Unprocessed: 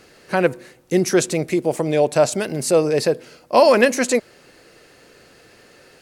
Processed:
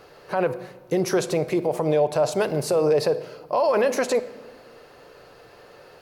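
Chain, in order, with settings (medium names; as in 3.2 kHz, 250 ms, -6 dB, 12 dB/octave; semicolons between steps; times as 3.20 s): graphic EQ 250/500/1000/2000/8000 Hz -7/+4/+7/-5/-11 dB; peak limiter -13.5 dBFS, peak gain reduction 15.5 dB; simulated room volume 1100 m³, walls mixed, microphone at 0.36 m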